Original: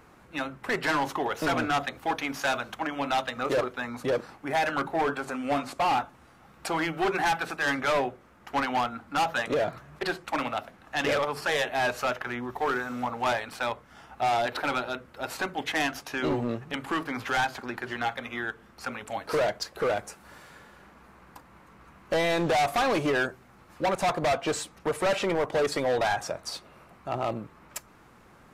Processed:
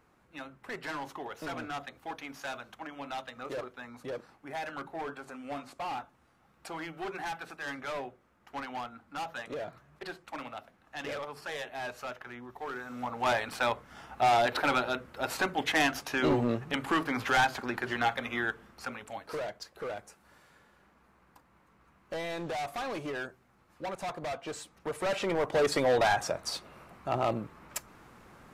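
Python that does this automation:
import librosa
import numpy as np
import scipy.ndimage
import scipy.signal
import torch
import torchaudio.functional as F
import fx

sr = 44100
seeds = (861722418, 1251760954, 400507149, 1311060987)

y = fx.gain(x, sr, db=fx.line((12.69, -11.5), (13.43, 1.0), (18.49, 1.0), (19.43, -11.0), (24.49, -11.0), (25.74, 0.5)))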